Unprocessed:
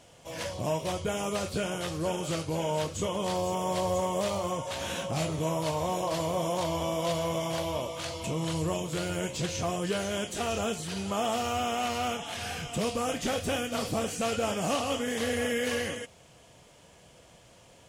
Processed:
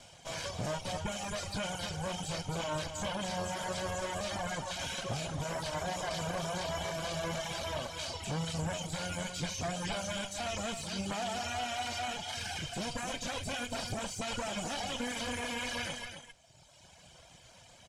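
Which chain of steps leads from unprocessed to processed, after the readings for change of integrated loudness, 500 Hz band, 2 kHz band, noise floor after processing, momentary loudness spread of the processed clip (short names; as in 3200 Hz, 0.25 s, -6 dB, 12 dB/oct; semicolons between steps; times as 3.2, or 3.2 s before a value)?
-5.5 dB, -8.5 dB, -2.0 dB, -58 dBFS, 2 LU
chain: minimum comb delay 1.3 ms; reverb removal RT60 1.6 s; high shelf 3400 Hz +12 dB; limiter -28 dBFS, peak gain reduction 11 dB; air absorption 76 m; on a send: echo 0.265 s -8 dB; on the sum: gain +1.5 dB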